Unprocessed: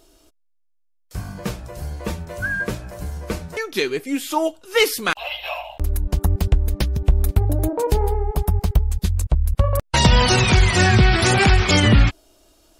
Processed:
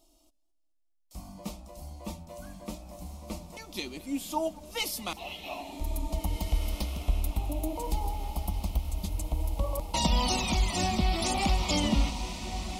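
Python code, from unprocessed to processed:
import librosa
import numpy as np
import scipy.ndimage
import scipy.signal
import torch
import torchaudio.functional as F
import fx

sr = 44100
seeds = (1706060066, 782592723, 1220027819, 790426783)

y = fx.fixed_phaser(x, sr, hz=430.0, stages=6)
y = fx.echo_diffused(y, sr, ms=1820, feedback_pct=54, wet_db=-8.5)
y = fx.echo_warbled(y, sr, ms=214, feedback_pct=53, rate_hz=2.8, cents=111, wet_db=-21.5)
y = y * 10.0 ** (-8.5 / 20.0)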